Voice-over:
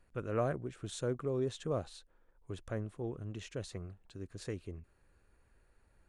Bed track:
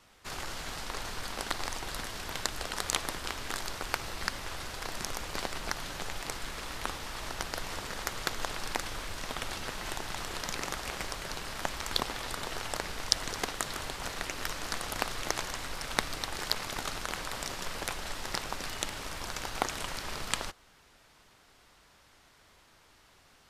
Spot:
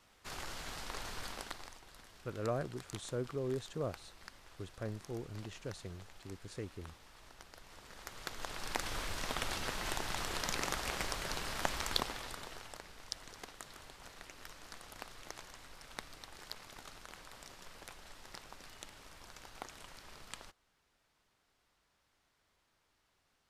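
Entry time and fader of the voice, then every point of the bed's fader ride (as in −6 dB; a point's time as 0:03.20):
2.10 s, −3.0 dB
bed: 0:01.28 −5.5 dB
0:01.82 −19.5 dB
0:07.63 −19.5 dB
0:08.96 −1 dB
0:11.81 −1 dB
0:12.84 −16 dB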